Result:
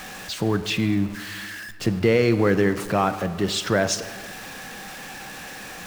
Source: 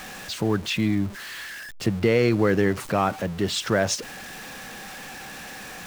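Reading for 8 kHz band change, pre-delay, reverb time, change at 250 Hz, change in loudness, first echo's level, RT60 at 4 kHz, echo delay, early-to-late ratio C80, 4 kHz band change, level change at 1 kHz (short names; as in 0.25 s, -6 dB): +1.0 dB, 5 ms, 2.0 s, +1.5 dB, +1.0 dB, none, 1.1 s, none, 14.0 dB, +1.0 dB, +1.5 dB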